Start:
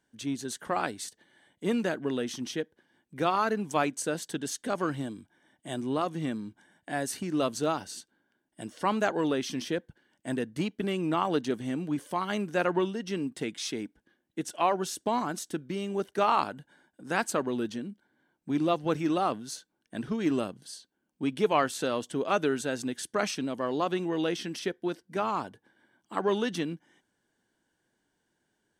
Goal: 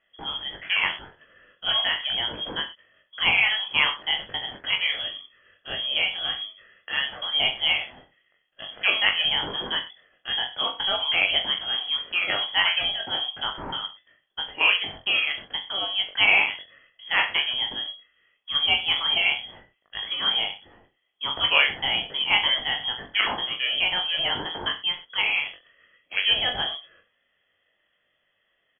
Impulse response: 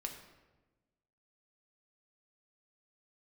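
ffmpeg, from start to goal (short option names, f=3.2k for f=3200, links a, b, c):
-af "crystalizer=i=8:c=0,aecho=1:1:20|42|66.2|92.82|122.1:0.631|0.398|0.251|0.158|0.1,lowpass=f=3k:t=q:w=0.5098,lowpass=f=3k:t=q:w=0.6013,lowpass=f=3k:t=q:w=0.9,lowpass=f=3k:t=q:w=2.563,afreqshift=-3500"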